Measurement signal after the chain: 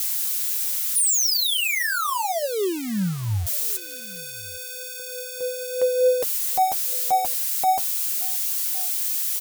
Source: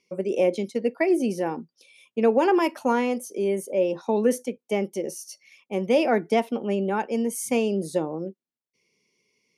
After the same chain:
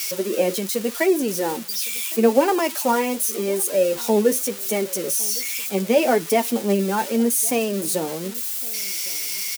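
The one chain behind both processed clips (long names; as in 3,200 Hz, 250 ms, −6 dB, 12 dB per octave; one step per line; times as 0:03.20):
spike at every zero crossing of −21 dBFS
flanger 0.8 Hz, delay 6.5 ms, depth 4.8 ms, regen +30%
single-tap delay 1,109 ms −23 dB
level +6.5 dB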